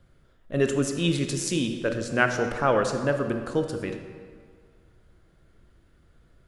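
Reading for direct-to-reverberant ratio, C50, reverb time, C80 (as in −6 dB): 5.5 dB, 6.5 dB, 1.9 s, 8.0 dB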